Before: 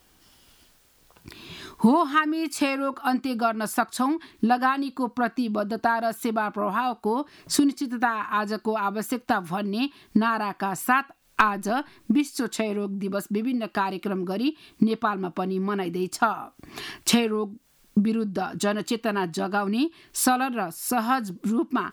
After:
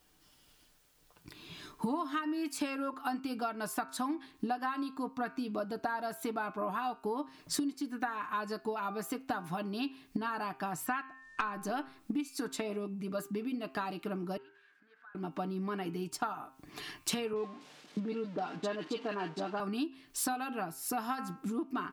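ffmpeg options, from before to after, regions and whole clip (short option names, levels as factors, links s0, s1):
-filter_complex "[0:a]asettb=1/sr,asplit=3[s0][s1][s2];[s0]atrim=end=10.864[s3];[s1]atrim=start=10.86:end=11.53,asetpts=PTS-STARTPTS,afade=t=in:d=0.004:c=qsin,afade=t=out:st=0.666:d=0.004:c=qsin,lowpass=f=8500:w=0.5412,lowpass=f=8500:w=1.3066,aeval=exprs='val(0)+0.00447*sin(2*PI*1800*n/s)':c=same[s4];[s2]atrim=start=11.526[s5];[s3][s4]acrossfade=d=0.004:c1=hsin:c2=qsin[s6];[s6][s5]acrossfade=d=0.004:c1=qsin:c2=hsin,asettb=1/sr,asplit=3[s7][s8][s9];[s7]atrim=end=14.374[s10];[s8]atrim=start=14.37:end=15.15,asetpts=PTS-STARTPTS,afade=t=in:d=0.004:c=qsin,afade=t=out:st=0.776:d=0.004:c=qsin,aeval=exprs='val(0)+0.5*0.0224*sgn(val(0))':c=same,bandpass=f=1600:t=q:w=15,acompressor=threshold=0.00316:ratio=2:attack=3.2:release=140:knee=1:detection=peak[s11];[s9]atrim=start=15.146[s12];[s10][s11]acrossfade=d=0.004:c1=hsin:c2=qsin[s13];[s13][s12]acrossfade=d=0.004:c1=qsin:c2=hsin,asettb=1/sr,asplit=3[s14][s15][s16];[s14]atrim=end=17.334[s17];[s15]atrim=start=17.33:end=19.6,asetpts=PTS-STARTPTS,afade=t=in:d=0.004:c=qsin,afade=t=out:st=2.266:d=0.004:c=qsin,aeval=exprs='val(0)+0.5*0.0188*sgn(val(0))':c=same,highpass=230,lowpass=4000,acrossover=split=1500[s18][s19];[s19]adelay=30[s20];[s18][s20]amix=inputs=2:normalize=0,atrim=end_sample=100107[s21];[s16]atrim=start=19.596[s22];[s17][s21]acrossfade=d=0.004:c1=hsin:c2=qsin[s23];[s23][s22]acrossfade=d=0.004:c1=qsin:c2=hsin,aecho=1:1:6.7:0.37,bandreject=f=132.9:t=h:w=4,bandreject=f=265.8:t=h:w=4,bandreject=f=398.7:t=h:w=4,bandreject=f=531.6:t=h:w=4,bandreject=f=664.5:t=h:w=4,bandreject=f=797.4:t=h:w=4,bandreject=f=930.3:t=h:w=4,bandreject=f=1063.2:t=h:w=4,bandreject=f=1196.1:t=h:w=4,bandreject=f=1329:t=h:w=4,bandreject=f=1461.9:t=h:w=4,bandreject=f=1594.8:t=h:w=4,bandreject=f=1727.7:t=h:w=4,bandreject=f=1860.6:t=h:w=4,bandreject=f=1993.5:t=h:w=4,bandreject=f=2126.4:t=h:w=4,bandreject=f=2259.3:t=h:w=4,bandreject=f=2392.2:t=h:w=4,bandreject=f=2525.1:t=h:w=4,bandreject=f=2658:t=h:w=4,bandreject=f=2790.9:t=h:w=4,bandreject=f=2923.8:t=h:w=4,bandreject=f=3056.7:t=h:w=4,acompressor=threshold=0.0794:ratio=5,volume=0.376"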